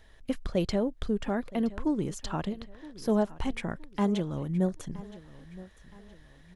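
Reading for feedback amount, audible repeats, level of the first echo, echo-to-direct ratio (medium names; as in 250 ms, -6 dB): 39%, 3, -18.5 dB, -18.0 dB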